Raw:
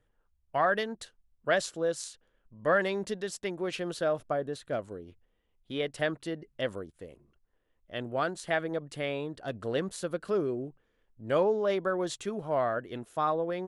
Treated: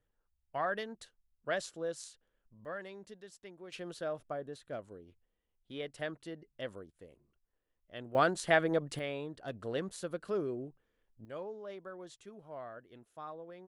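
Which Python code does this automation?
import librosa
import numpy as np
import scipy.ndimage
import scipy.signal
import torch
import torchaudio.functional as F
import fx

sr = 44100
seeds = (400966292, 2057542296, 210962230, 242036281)

y = fx.gain(x, sr, db=fx.steps((0.0, -8.0), (2.65, -17.0), (3.72, -9.0), (8.15, 2.5), (8.99, -5.5), (11.25, -17.0)))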